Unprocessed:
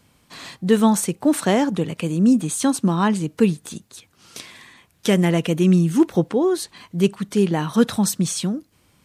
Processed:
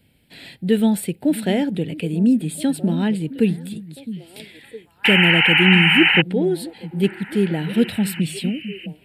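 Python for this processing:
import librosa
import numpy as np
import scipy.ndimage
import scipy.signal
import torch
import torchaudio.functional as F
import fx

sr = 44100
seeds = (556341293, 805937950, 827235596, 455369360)

y = fx.spec_paint(x, sr, seeds[0], shape='noise', start_s=5.04, length_s=1.18, low_hz=760.0, high_hz=3100.0, level_db=-13.0)
y = fx.fixed_phaser(y, sr, hz=2700.0, stages=4)
y = fx.echo_stepped(y, sr, ms=662, hz=190.0, octaves=1.4, feedback_pct=70, wet_db=-11)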